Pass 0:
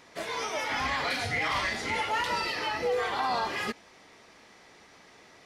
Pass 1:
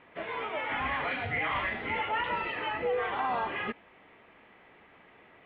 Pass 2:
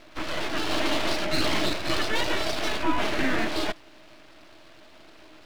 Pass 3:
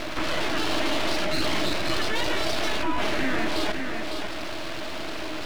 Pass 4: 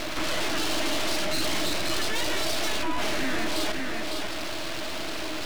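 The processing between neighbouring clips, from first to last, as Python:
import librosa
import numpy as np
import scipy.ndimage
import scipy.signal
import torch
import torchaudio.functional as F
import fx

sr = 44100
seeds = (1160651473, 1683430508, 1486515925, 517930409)

y1 = scipy.signal.sosfilt(scipy.signal.butter(8, 3100.0, 'lowpass', fs=sr, output='sos'), x)
y1 = y1 * 10.0 ** (-1.5 / 20.0)
y2 = fx.high_shelf(y1, sr, hz=4200.0, db=11.0)
y2 = np.abs(y2)
y2 = fx.small_body(y2, sr, hz=(320.0, 620.0), ring_ms=60, db=13)
y2 = y2 * 10.0 ** (6.0 / 20.0)
y3 = y2 + 10.0 ** (-16.0 / 20.0) * np.pad(y2, (int(554 * sr / 1000.0), 0))[:len(y2)]
y3 = fx.env_flatten(y3, sr, amount_pct=70)
y3 = y3 * 10.0 ** (-3.0 / 20.0)
y4 = fx.high_shelf(y3, sr, hz=4500.0, db=7.5)
y4 = 10.0 ** (-18.5 / 20.0) * np.tanh(y4 / 10.0 ** (-18.5 / 20.0))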